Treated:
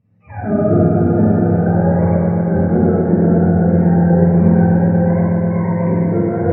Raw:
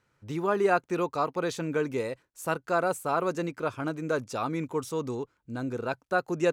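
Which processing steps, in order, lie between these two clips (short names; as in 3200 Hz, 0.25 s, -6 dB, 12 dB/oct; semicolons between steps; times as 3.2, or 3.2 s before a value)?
spectrum mirrored in octaves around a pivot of 500 Hz; tilt -3.5 dB/oct; notch 3500 Hz, Q 8.2; swelling echo 0.122 s, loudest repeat 5, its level -12.5 dB; Schroeder reverb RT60 2.1 s, combs from 29 ms, DRR -8.5 dB; gain -1 dB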